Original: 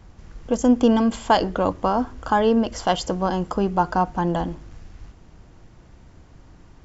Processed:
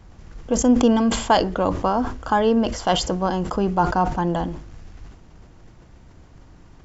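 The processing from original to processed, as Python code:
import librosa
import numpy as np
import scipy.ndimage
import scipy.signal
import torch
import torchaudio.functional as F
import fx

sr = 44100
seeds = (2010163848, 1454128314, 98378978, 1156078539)

y = fx.sustainer(x, sr, db_per_s=83.0)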